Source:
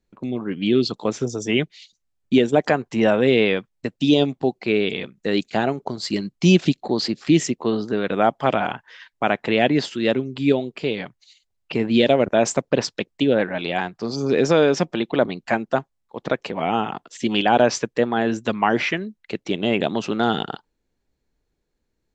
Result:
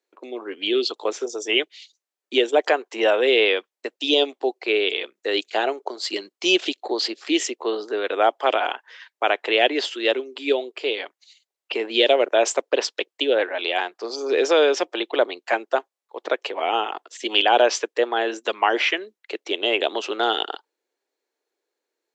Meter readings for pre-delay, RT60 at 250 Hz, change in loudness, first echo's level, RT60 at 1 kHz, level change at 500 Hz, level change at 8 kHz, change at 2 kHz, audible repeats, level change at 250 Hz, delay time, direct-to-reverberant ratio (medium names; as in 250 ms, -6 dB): no reverb, no reverb, -1.0 dB, no echo, no reverb, -0.5 dB, +0.5 dB, +2.0 dB, no echo, -9.0 dB, no echo, no reverb